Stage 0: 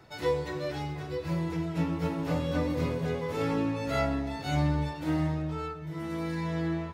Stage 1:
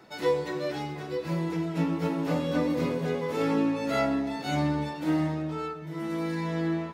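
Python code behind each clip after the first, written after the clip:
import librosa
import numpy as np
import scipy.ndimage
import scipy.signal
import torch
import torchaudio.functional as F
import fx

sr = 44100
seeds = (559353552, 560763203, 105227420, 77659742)

y = fx.low_shelf_res(x, sr, hz=140.0, db=-12.0, q=1.5)
y = y * librosa.db_to_amplitude(2.0)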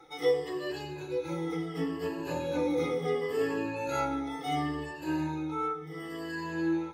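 y = fx.spec_ripple(x, sr, per_octave=1.4, drift_hz=-0.71, depth_db=17)
y = y + 0.78 * np.pad(y, (int(2.4 * sr / 1000.0), 0))[:len(y)]
y = y * librosa.db_to_amplitude(-7.5)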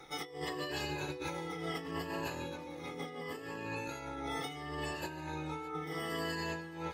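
y = fx.spec_clip(x, sr, under_db=13)
y = fx.over_compress(y, sr, threshold_db=-38.0, ratio=-1.0)
y = y + 10.0 ** (-19.5 / 20.0) * np.pad(y, (int(613 * sr / 1000.0), 0))[:len(y)]
y = y * librosa.db_to_amplitude(-3.0)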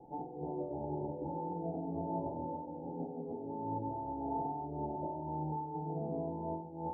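y = scipy.signal.sosfilt(scipy.signal.cheby1(6, 9, 910.0, 'lowpass', fs=sr, output='sos'), x)
y = fx.rev_spring(y, sr, rt60_s=1.1, pass_ms=(46,), chirp_ms=50, drr_db=4.0)
y = y * librosa.db_to_amplitude(6.5)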